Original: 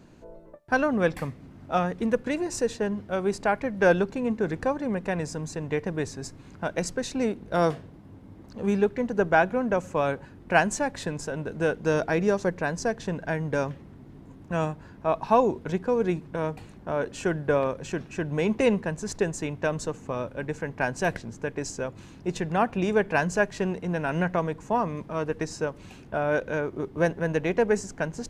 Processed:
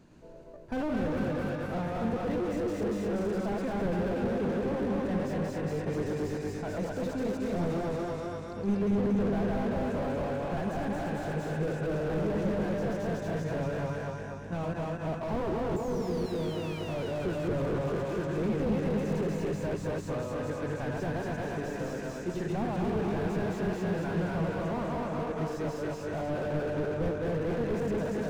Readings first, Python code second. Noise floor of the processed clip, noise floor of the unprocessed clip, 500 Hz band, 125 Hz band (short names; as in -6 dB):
-39 dBFS, -48 dBFS, -5.0 dB, -0.5 dB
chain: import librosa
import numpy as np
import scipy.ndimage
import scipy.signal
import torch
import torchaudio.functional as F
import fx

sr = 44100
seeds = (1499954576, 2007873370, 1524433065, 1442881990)

p1 = fx.reverse_delay_fb(x, sr, ms=110, feedback_pct=60, wet_db=-2.5)
p2 = fx.spec_paint(p1, sr, seeds[0], shape='fall', start_s=15.76, length_s=1.03, low_hz=2300.0, high_hz=7400.0, level_db=-28.0)
p3 = p2 + fx.echo_feedback(p2, sr, ms=240, feedback_pct=54, wet_db=-3, dry=0)
p4 = fx.slew_limit(p3, sr, full_power_hz=31.0)
y = F.gain(torch.from_numpy(p4), -5.5).numpy()